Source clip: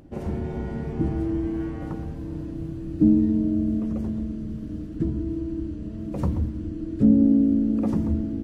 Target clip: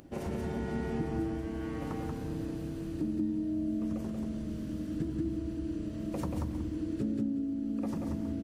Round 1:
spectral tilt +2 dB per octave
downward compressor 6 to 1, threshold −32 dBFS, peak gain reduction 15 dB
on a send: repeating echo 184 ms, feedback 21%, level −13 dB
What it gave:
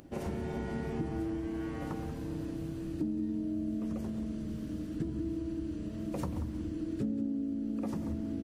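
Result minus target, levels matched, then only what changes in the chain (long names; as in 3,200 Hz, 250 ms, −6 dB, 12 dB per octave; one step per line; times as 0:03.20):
echo-to-direct −9.5 dB
change: repeating echo 184 ms, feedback 21%, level −3.5 dB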